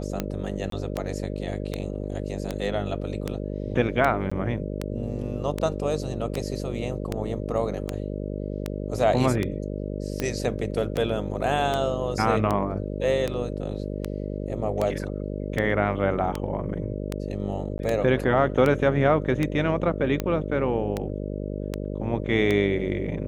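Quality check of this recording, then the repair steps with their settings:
mains buzz 50 Hz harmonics 12 −31 dBFS
scratch tick 78 rpm −12 dBFS
0:00.70–0:00.72: drop-out 23 ms
0:04.30–0:04.32: drop-out 15 ms
0:17.78–0:17.79: drop-out 11 ms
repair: click removal
hum removal 50 Hz, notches 12
repair the gap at 0:00.70, 23 ms
repair the gap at 0:04.30, 15 ms
repair the gap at 0:17.78, 11 ms

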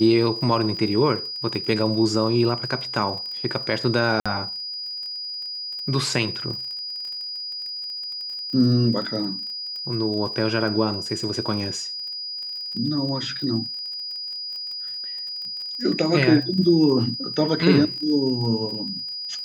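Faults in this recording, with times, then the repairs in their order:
surface crackle 30 per second −32 dBFS
whistle 4,900 Hz −29 dBFS
0:04.20–0:04.26: drop-out 56 ms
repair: click removal
notch filter 4,900 Hz, Q 30
repair the gap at 0:04.20, 56 ms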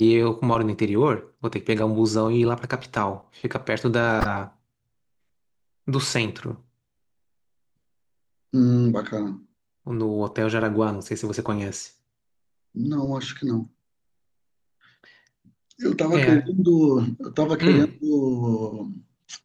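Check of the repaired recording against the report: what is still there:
none of them is left

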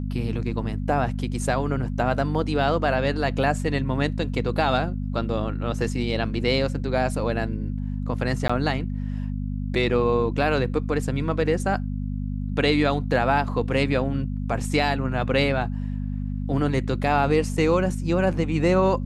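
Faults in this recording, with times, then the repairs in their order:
mains hum 50 Hz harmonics 5 −28 dBFS
0:08.48–0:08.49: drop-out 15 ms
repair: hum removal 50 Hz, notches 5
repair the gap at 0:08.48, 15 ms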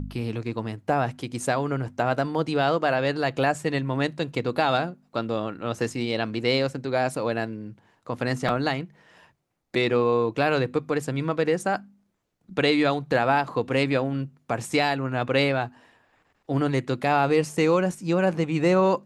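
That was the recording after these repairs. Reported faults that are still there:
none of them is left

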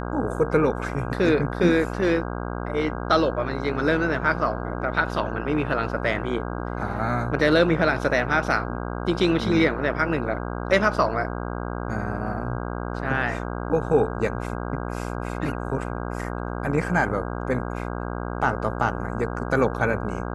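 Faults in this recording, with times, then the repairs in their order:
mains buzz 60 Hz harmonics 27 −30 dBFS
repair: hum removal 60 Hz, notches 27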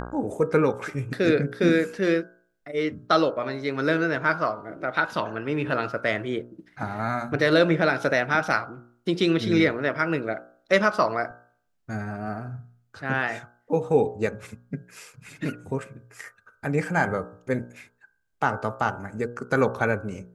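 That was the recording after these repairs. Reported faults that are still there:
none of them is left

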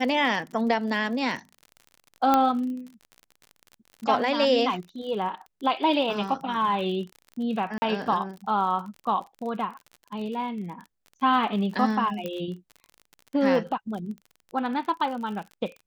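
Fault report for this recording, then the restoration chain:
surface crackle 41 per second −35 dBFS
0:02.34: click −8 dBFS
0:07.78–0:07.82: drop-out 40 ms
0:12.26: click −18 dBFS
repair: click removal
repair the gap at 0:07.78, 40 ms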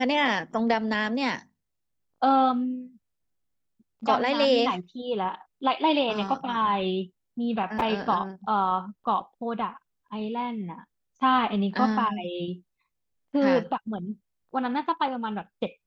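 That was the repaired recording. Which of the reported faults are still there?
none of them is left

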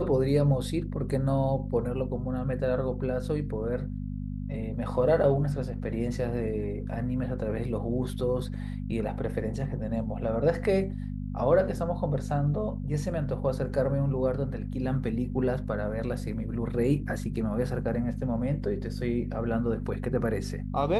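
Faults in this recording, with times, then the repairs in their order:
mains hum 50 Hz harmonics 5 −34 dBFS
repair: hum removal 50 Hz, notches 5

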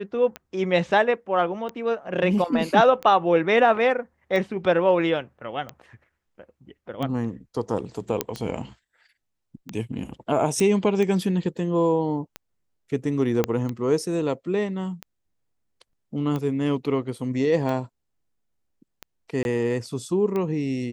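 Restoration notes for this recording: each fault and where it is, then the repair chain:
scratch tick 45 rpm −17 dBFS
0:08.21: click −6 dBFS
0:10.60: click −13 dBFS
0:13.44: click −8 dBFS
0:19.43–0:19.45: drop-out 21 ms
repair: click removal
repair the gap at 0:19.43, 21 ms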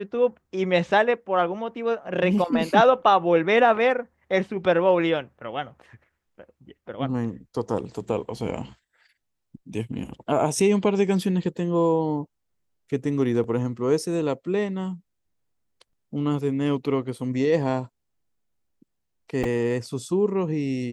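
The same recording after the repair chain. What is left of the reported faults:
0:13.44: click

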